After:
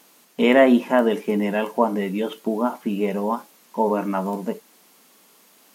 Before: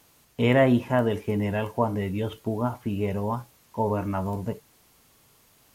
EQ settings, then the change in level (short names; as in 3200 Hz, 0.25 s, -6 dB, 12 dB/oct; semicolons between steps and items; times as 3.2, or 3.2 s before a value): brick-wall FIR high-pass 170 Hz; +5.5 dB